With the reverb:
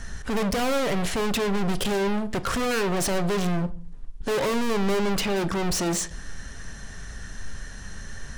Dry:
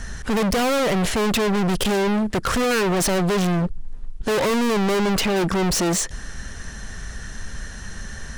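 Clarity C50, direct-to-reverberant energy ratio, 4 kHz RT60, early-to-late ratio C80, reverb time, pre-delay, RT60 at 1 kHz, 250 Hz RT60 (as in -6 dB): 19.0 dB, 11.5 dB, 0.35 s, 24.0 dB, 0.45 s, 7 ms, 0.45 s, 0.60 s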